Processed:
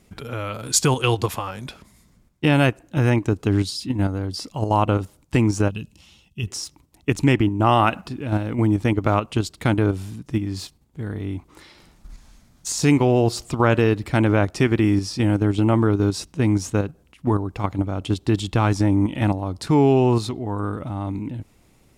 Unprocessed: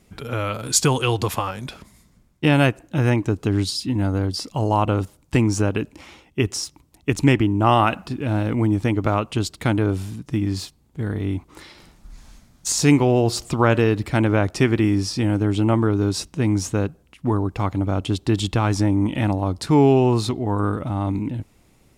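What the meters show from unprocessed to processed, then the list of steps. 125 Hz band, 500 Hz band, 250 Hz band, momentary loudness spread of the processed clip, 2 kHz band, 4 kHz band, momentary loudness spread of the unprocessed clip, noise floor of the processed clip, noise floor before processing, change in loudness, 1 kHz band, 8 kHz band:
-0.5 dB, -0.5 dB, -0.5 dB, 13 LU, -0.5 dB, -2.0 dB, 11 LU, -58 dBFS, -58 dBFS, -0.5 dB, -0.5 dB, -2.0 dB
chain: time-frequency box 5.70–6.47 s, 230–2500 Hz -13 dB; in parallel at +2.5 dB: level held to a coarse grid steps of 20 dB; on the sum: trim -5.5 dB

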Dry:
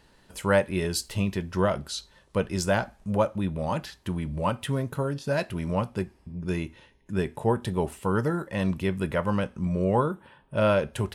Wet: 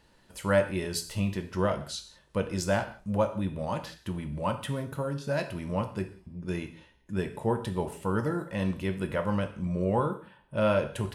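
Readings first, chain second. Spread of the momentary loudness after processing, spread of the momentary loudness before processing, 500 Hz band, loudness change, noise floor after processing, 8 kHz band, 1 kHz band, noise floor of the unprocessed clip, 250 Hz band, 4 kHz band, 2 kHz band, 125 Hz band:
10 LU, 9 LU, -3.0 dB, -3.0 dB, -63 dBFS, -3.0 dB, -3.0 dB, -60 dBFS, -3.0 dB, -3.0 dB, -3.5 dB, -3.5 dB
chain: gated-style reverb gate 210 ms falling, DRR 7 dB; trim -4 dB

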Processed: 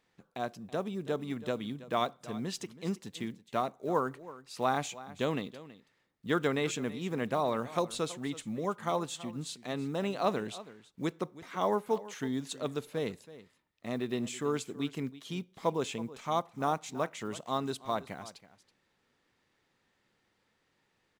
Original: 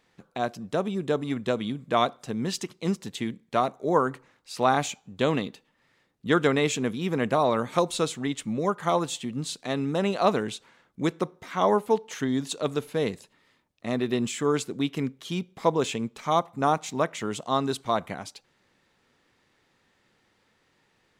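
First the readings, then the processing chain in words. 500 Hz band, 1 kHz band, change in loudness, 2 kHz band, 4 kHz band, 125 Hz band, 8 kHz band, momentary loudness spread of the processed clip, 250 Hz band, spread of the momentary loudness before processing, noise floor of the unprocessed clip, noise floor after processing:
-7.5 dB, -7.5 dB, -7.5 dB, -7.5 dB, -7.5 dB, -7.5 dB, -7.5 dB, 10 LU, -7.5 dB, 9 LU, -69 dBFS, -76 dBFS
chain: block-companded coder 7-bit; on a send: delay 326 ms -17 dB; on the sum: trim -7.5 dB

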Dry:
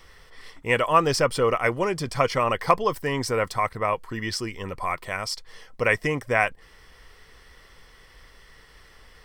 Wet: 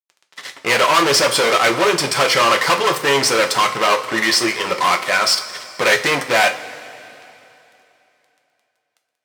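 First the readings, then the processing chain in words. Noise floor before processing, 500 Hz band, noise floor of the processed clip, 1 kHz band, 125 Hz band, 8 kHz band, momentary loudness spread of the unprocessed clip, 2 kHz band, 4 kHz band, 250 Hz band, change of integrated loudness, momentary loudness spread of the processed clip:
-53 dBFS, +6.5 dB, -74 dBFS, +8.0 dB, -1.5 dB, +15.5 dB, 10 LU, +10.5 dB, +16.5 dB, +6.0 dB, +9.0 dB, 9 LU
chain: fuzz box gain 32 dB, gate -40 dBFS; frequency weighting A; two-slope reverb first 0.3 s, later 3.1 s, from -18 dB, DRR 3.5 dB; trim +1 dB

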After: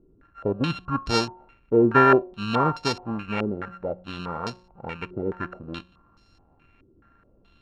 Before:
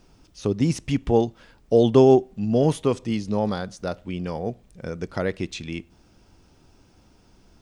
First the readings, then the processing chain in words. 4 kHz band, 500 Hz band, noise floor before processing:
+4.0 dB, -4.0 dB, -57 dBFS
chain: sorted samples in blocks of 32 samples; de-hum 181.8 Hz, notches 6; step-sequenced low-pass 4.7 Hz 380–5000 Hz; trim -5 dB

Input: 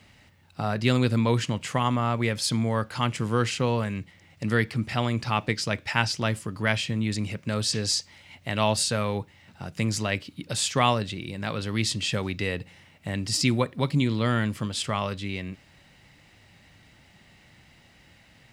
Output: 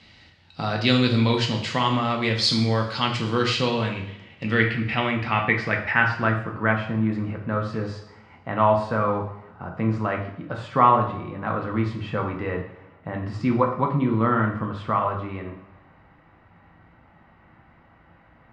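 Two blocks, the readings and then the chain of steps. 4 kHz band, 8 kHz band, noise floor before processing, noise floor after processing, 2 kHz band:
+1.0 dB, under -10 dB, -57 dBFS, -55 dBFS, +5.0 dB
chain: two-slope reverb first 0.61 s, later 1.8 s, DRR 1 dB; low-pass sweep 4.3 kHz -> 1.2 kHz, 3.45–6.97 s

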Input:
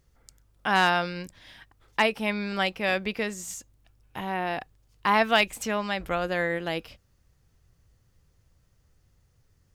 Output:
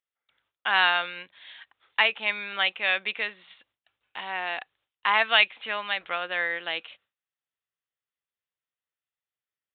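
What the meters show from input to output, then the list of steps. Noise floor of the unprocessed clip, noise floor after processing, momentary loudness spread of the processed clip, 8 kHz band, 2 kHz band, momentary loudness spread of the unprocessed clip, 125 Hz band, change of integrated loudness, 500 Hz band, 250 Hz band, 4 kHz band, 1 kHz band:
-67 dBFS, under -85 dBFS, 14 LU, under -40 dB, +3.5 dB, 15 LU, under -15 dB, +1.5 dB, -7.0 dB, -17.0 dB, +5.0 dB, -2.0 dB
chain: high-pass 1.2 kHz 6 dB/octave; gate with hold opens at -57 dBFS; tilt EQ +2.5 dB/octave; resampled via 8 kHz; trim +2.5 dB

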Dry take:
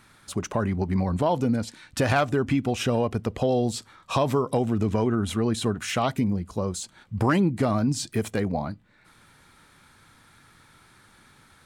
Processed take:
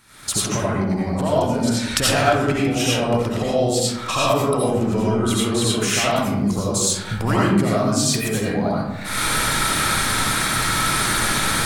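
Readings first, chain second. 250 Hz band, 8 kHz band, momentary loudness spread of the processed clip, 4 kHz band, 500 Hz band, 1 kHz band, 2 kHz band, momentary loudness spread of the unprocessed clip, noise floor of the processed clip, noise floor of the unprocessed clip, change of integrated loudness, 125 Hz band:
+4.5 dB, +16.5 dB, 4 LU, +14.5 dB, +5.5 dB, +7.5 dB, +12.0 dB, 8 LU, -29 dBFS, -57 dBFS, +6.0 dB, +4.0 dB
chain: recorder AGC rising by 54 dB/s; treble shelf 3.3 kHz +8.5 dB; algorithmic reverb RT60 0.98 s, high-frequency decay 0.45×, pre-delay 45 ms, DRR -6.5 dB; trim -3.5 dB

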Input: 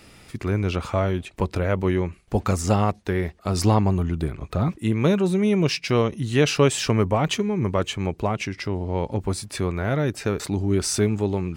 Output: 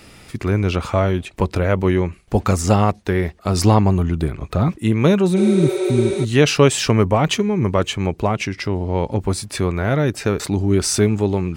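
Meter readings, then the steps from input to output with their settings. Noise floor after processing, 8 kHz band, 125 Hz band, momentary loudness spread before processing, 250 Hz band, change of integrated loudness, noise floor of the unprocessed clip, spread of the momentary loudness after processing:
-46 dBFS, +5.0 dB, +5.0 dB, 7 LU, +5.0 dB, +5.0 dB, -51 dBFS, 7 LU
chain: spectral replace 5.39–6.22 s, 350–10000 Hz before; trim +5 dB

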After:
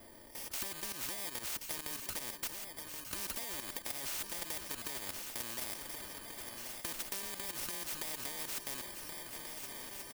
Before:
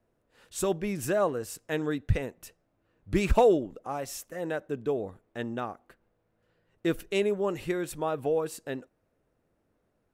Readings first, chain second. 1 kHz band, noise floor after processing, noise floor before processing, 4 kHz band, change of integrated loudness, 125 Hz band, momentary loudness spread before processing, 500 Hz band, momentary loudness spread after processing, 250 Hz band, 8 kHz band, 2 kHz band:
-14.0 dB, -52 dBFS, -75 dBFS, +2.5 dB, -9.5 dB, -21.5 dB, 13 LU, -23.5 dB, 5 LU, -20.0 dB, +3.0 dB, -6.0 dB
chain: bit-reversed sample order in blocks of 32 samples; peaking EQ 73 Hz -7 dB 2.3 oct; level held to a coarse grid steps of 16 dB; peak limiter -30 dBFS, peak gain reduction 9 dB; compression 5:1, threshold -44 dBFS, peak gain reduction 9 dB; comb 3.3 ms, depth 58%; shuffle delay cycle 1436 ms, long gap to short 3:1, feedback 62%, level -19 dB; spectrum-flattening compressor 4:1; trim +9 dB

